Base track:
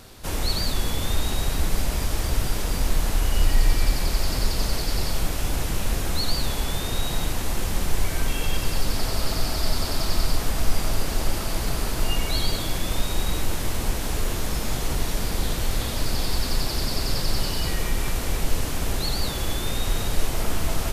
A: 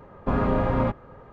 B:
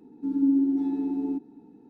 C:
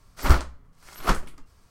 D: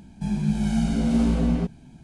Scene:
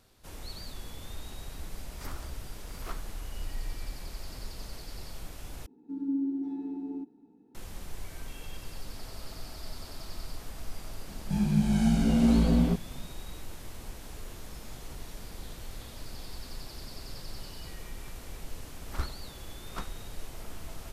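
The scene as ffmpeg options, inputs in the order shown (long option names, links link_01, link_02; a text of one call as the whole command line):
ffmpeg -i bed.wav -i cue0.wav -i cue1.wav -i cue2.wav -i cue3.wav -filter_complex "[3:a]asplit=2[link_01][link_02];[0:a]volume=-17.5dB[link_03];[link_01]acompressor=threshold=-30dB:ratio=6:attack=3.2:release=140:knee=1:detection=peak[link_04];[link_02]aresample=32000,aresample=44100[link_05];[link_03]asplit=2[link_06][link_07];[link_06]atrim=end=5.664[link_08];[2:a]atrim=end=1.89,asetpts=PTS-STARTPTS,volume=-8.5dB[link_09];[link_07]atrim=start=7.546[link_10];[link_04]atrim=end=1.7,asetpts=PTS-STARTPTS,volume=-7.5dB,afade=type=in:duration=0.004:curve=hsin,afade=type=out:start_time=1.696:duration=0.004:curve=hsin,adelay=1820[link_11];[4:a]atrim=end=2.03,asetpts=PTS-STARTPTS,volume=-1.5dB,afade=type=in:duration=0.004:curve=hsin,afade=type=out:start_time=2.026:duration=0.004:curve=hsin,adelay=11090[link_12];[link_05]atrim=end=1.7,asetpts=PTS-STARTPTS,volume=-16.5dB,afade=type=in:duration=0.004:curve=hsin,afade=type=out:start_time=1.696:duration=0.004:curve=hsin,adelay=18690[link_13];[link_08][link_09]acrossfade=duration=0.004:curve1=hsin:curve2=hsin[link_14];[link_14][link_10]acrossfade=duration=0.004:curve1=hsin:curve2=hsin[link_15];[link_15][link_11][link_12][link_13]amix=inputs=4:normalize=0" out.wav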